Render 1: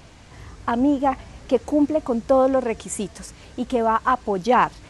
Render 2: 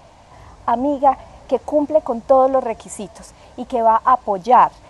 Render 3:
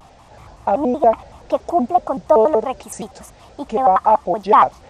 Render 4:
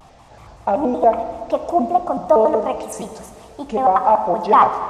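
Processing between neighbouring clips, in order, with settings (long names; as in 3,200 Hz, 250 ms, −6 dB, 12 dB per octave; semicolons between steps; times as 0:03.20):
flat-topped bell 760 Hz +11 dB 1.1 octaves; level −3 dB
pitch modulation by a square or saw wave square 5.3 Hz, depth 250 cents
dense smooth reverb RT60 2 s, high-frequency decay 0.8×, DRR 7.5 dB; level −1 dB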